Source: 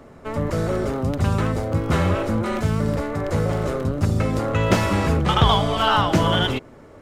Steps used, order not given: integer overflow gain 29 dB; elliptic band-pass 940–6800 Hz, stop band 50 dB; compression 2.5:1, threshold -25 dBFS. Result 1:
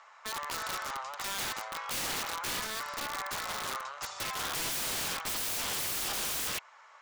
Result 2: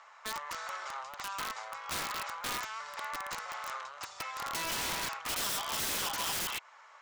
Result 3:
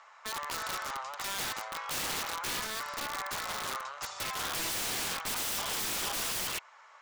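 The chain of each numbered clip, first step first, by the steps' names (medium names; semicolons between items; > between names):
elliptic band-pass > integer overflow > compression; compression > elliptic band-pass > integer overflow; elliptic band-pass > compression > integer overflow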